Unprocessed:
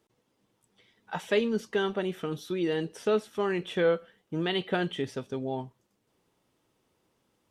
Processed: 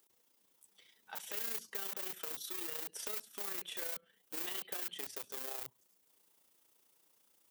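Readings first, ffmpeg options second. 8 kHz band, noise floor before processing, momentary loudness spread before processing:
+7.5 dB, -75 dBFS, 9 LU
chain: -filter_complex "[0:a]acrossover=split=240[s0][s1];[s0]aeval=exprs='(mod(119*val(0)+1,2)-1)/119':c=same[s2];[s1]acompressor=threshold=0.01:ratio=10[s3];[s2][s3]amix=inputs=2:normalize=0,tremolo=f=29:d=0.519,aemphasis=mode=production:type=riaa,volume=0.708"

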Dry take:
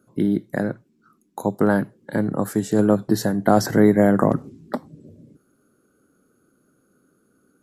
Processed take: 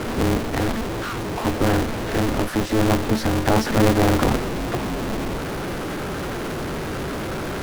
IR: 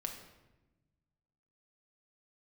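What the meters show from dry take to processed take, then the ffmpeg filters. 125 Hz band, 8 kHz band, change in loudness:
+3.0 dB, +4.0 dB, -2.0 dB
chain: -af "aeval=exprs='val(0)+0.5*0.158*sgn(val(0))':c=same,equalizer=f=7000:w=2.3:g=-8.5,adynamicsmooth=sensitivity=4.5:basefreq=1700,equalizer=f=68:w=0.63:g=6,aeval=exprs='val(0)*sgn(sin(2*PI*110*n/s))':c=same,volume=0.531"

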